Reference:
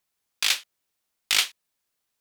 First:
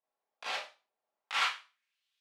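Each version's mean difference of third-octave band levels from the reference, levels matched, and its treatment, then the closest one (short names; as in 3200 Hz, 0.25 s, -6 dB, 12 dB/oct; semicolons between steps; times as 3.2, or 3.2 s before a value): 10.5 dB: high shelf 8400 Hz -4.5 dB; band-pass sweep 670 Hz -> 3200 Hz, 1.09–2.01; Schroeder reverb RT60 0.32 s, combs from 28 ms, DRR -9.5 dB; gain -3 dB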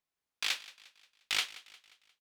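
3.0 dB: high shelf 5900 Hz -10.5 dB; on a send: feedback echo 0.177 s, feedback 48%, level -19 dB; on the sum: gain -7 dB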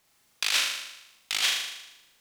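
8.0 dB: high shelf 10000 Hz -6 dB; negative-ratio compressor -33 dBFS, ratio -1; flutter echo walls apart 6.7 m, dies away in 0.93 s; gain +4.5 dB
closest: second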